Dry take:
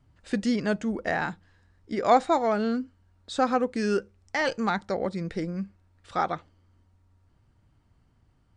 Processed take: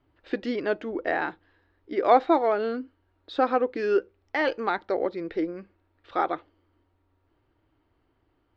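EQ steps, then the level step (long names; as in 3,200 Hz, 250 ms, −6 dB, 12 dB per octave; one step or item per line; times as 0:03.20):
low-pass filter 3,900 Hz 24 dB per octave
low shelf with overshoot 250 Hz −8 dB, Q 3
0.0 dB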